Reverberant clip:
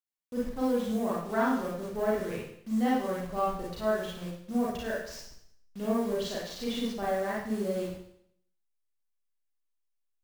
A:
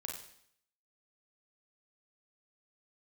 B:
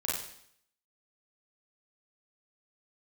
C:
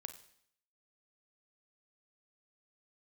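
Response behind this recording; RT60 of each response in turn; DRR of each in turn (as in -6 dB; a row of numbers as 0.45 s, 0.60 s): B; 0.65 s, 0.65 s, 0.65 s; 0.0 dB, -6.5 dB, 8.5 dB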